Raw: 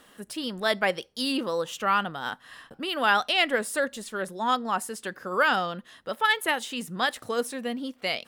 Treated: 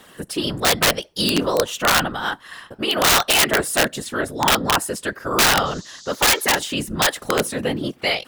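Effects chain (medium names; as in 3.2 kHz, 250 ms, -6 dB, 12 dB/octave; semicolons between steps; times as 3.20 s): whisper effect; 5.65–6.64 s: band noise 3.6–7.1 kHz -51 dBFS; integer overflow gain 17.5 dB; trim +8.5 dB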